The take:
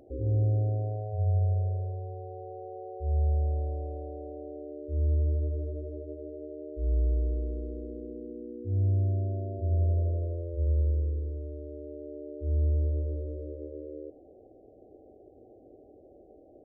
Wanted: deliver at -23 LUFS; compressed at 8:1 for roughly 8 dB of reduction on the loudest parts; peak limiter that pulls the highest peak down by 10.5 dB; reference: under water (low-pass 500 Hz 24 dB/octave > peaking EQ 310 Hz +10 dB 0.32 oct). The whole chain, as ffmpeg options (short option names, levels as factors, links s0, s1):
-af "acompressor=threshold=0.0282:ratio=8,alimiter=level_in=3.76:limit=0.0631:level=0:latency=1,volume=0.266,lowpass=f=500:w=0.5412,lowpass=f=500:w=1.3066,equalizer=f=310:t=o:w=0.32:g=10,volume=8.41"